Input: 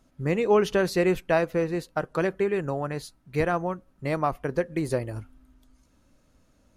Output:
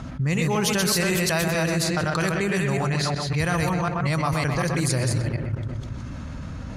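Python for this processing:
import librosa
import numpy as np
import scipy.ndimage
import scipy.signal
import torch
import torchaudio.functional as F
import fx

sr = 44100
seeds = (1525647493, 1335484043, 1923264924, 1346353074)

p1 = fx.reverse_delay(x, sr, ms=185, wet_db=-2.5)
p2 = p1 + fx.echo_filtered(p1, sr, ms=126, feedback_pct=49, hz=3100.0, wet_db=-8.5, dry=0)
p3 = fx.env_lowpass(p2, sr, base_hz=1600.0, full_db=-18.0)
p4 = scipy.signal.sosfilt(scipy.signal.butter(2, 100.0, 'highpass', fs=sr, output='sos'), p3)
p5 = fx.peak_eq(p4, sr, hz=380.0, db=-13.0, octaves=2.4)
p6 = fx.level_steps(p5, sr, step_db=22)
p7 = p5 + (p6 * librosa.db_to_amplitude(2.5))
p8 = fx.bass_treble(p7, sr, bass_db=9, treble_db=13)
y = fx.env_flatten(p8, sr, amount_pct=70)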